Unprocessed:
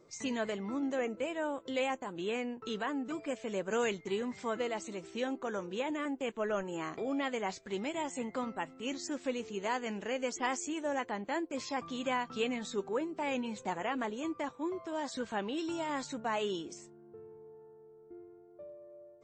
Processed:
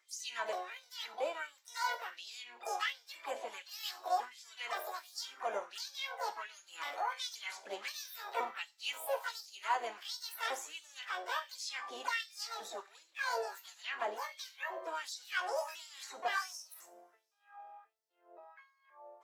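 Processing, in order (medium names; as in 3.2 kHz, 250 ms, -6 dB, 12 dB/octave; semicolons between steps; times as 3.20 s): pitch shift switched off and on +10.5 st, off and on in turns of 525 ms; gain riding 0.5 s; harmony voices +7 st -8 dB, +12 st -17 dB; two-slope reverb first 0.39 s, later 2.4 s, from -27 dB, DRR 7 dB; LFO high-pass sine 1.4 Hz 590–5100 Hz; trim -5 dB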